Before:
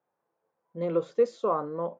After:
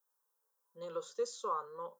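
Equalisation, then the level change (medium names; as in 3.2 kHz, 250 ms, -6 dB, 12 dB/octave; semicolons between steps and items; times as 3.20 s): differentiator; static phaser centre 450 Hz, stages 8; band-stop 4.5 kHz, Q 16; +11.0 dB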